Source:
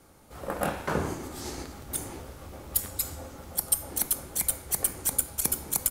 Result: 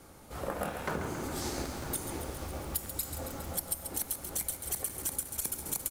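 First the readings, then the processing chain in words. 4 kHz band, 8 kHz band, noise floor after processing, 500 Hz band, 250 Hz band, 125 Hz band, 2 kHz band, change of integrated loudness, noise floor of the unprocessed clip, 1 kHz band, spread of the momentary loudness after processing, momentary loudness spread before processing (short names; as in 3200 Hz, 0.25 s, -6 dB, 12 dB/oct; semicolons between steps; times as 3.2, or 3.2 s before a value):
-3.5 dB, -6.5 dB, -52 dBFS, -3.0 dB, -2.5 dB, -2.5 dB, -3.5 dB, -6.0 dB, -55 dBFS, -3.5 dB, 6 LU, 14 LU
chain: echo 0.95 s -18.5 dB; compressor 6:1, threshold -35 dBFS, peak gain reduction 15.5 dB; lo-fi delay 0.137 s, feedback 80%, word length 9-bit, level -9 dB; gain +3 dB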